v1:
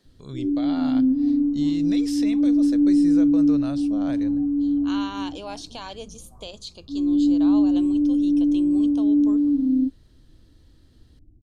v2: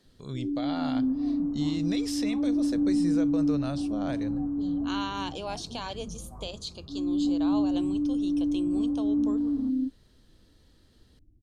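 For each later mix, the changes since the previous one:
first sound -7.5 dB; second sound +6.5 dB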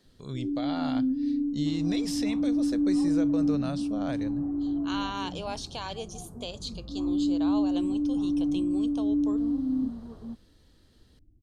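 second sound: entry +0.65 s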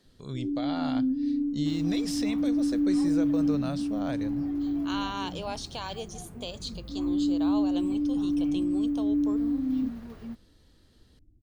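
second sound: remove LPF 1200 Hz 24 dB/oct

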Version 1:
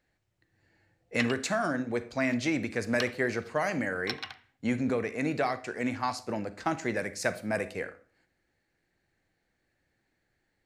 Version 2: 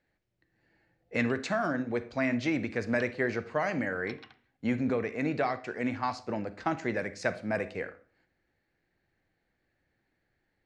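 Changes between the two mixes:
background -11.0 dB; master: add air absorption 120 m

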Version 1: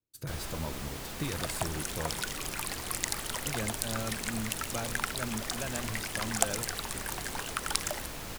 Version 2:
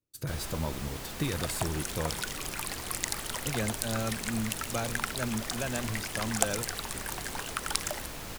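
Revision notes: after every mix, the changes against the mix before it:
speech +4.0 dB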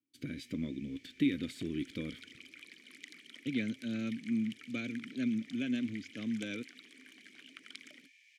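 speech +11.0 dB; first sound: add rippled Chebyshev high-pass 1700 Hz, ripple 9 dB; master: add vowel filter i

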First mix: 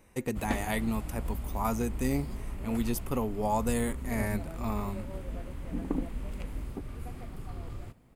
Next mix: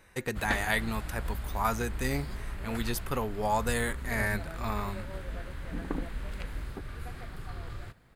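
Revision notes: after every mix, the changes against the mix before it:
master: add fifteen-band EQ 250 Hz -6 dB, 1600 Hz +11 dB, 4000 Hz +8 dB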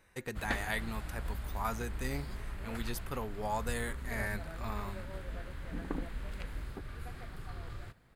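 speech -7.0 dB; background -3.5 dB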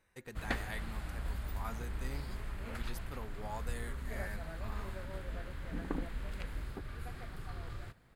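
speech -8.5 dB

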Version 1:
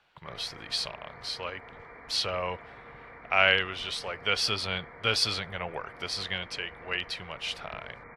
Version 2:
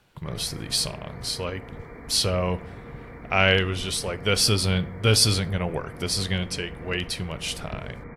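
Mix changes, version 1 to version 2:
speech: send on; master: remove three-band isolator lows -15 dB, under 580 Hz, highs -19 dB, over 4700 Hz

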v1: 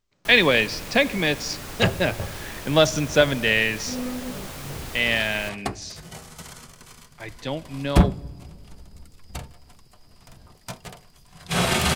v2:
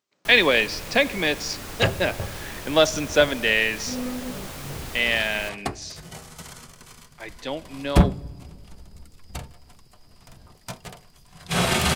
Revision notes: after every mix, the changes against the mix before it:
speech: add HPF 250 Hz 12 dB/oct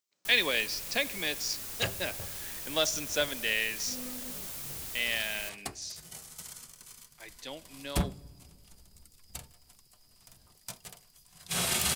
master: add pre-emphasis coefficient 0.8

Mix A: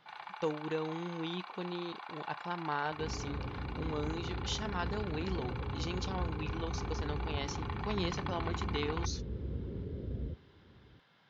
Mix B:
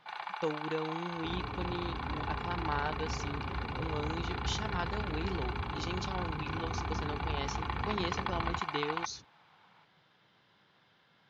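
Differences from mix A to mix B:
first sound +6.0 dB; second sound: entry -1.75 s

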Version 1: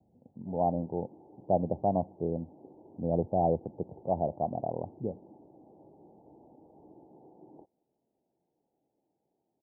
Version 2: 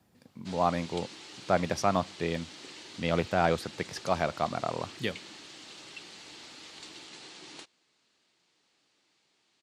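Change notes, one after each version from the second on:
master: remove steep low-pass 850 Hz 72 dB/oct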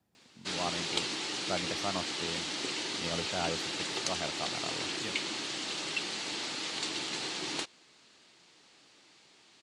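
speech -9.5 dB; background +11.5 dB

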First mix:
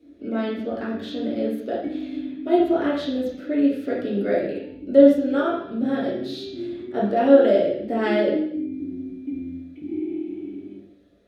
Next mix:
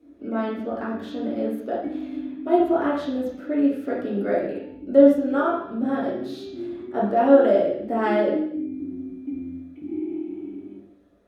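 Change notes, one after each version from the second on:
master: add graphic EQ 125/500/1000/2000/4000 Hz -4/-3/+8/-3/-8 dB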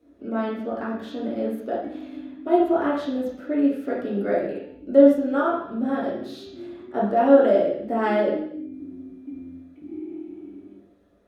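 background -5.5 dB

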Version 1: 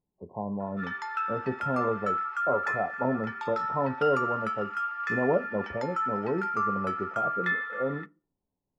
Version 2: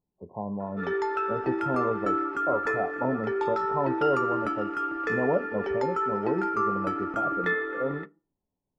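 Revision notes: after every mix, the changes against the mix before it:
background: remove HPF 1000 Hz 24 dB/oct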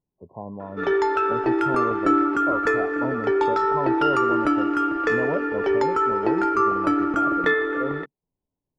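background +10.0 dB; reverb: off

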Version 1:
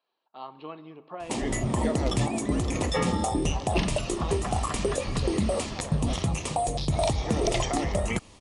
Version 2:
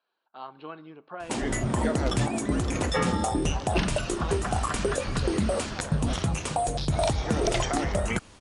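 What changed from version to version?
speech: send -11.0 dB; master: add bell 1500 Hz +14 dB 0.24 oct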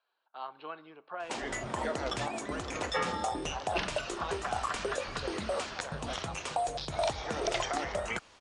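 background -3.0 dB; master: add three-band isolator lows -13 dB, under 440 Hz, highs -18 dB, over 7400 Hz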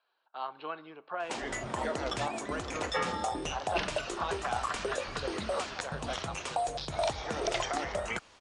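speech +3.5 dB

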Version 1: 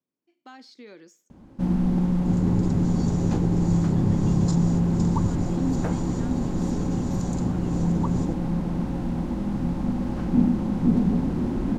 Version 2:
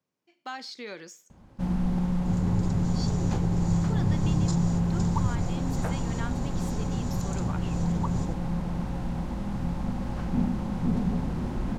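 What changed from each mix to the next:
speech +10.5 dB; master: add bell 290 Hz -10.5 dB 1.2 oct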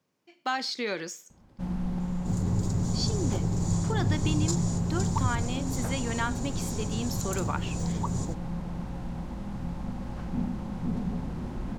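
speech +8.0 dB; first sound -4.5 dB; second sound: remove air absorption 87 m

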